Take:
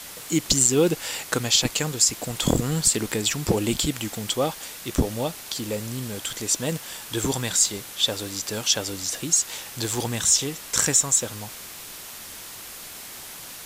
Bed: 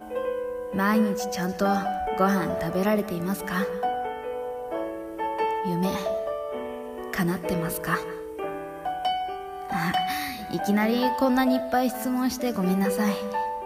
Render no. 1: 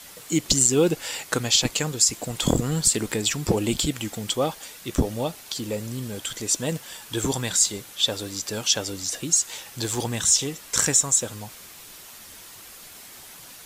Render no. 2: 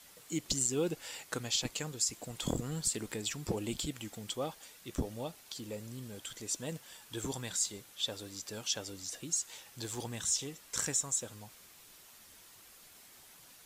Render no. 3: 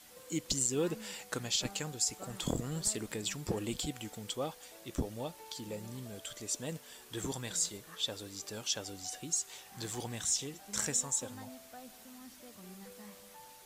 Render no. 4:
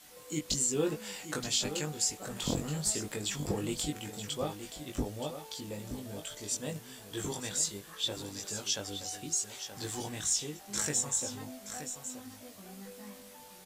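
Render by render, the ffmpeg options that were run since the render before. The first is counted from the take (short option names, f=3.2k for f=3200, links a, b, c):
-af "afftdn=nr=6:nf=-40"
-af "volume=-13dB"
-filter_complex "[1:a]volume=-28dB[a];[0:a][a]amix=inputs=2:normalize=0"
-filter_complex "[0:a]asplit=2[a][b];[b]adelay=20,volume=-3dB[c];[a][c]amix=inputs=2:normalize=0,aecho=1:1:924:0.316"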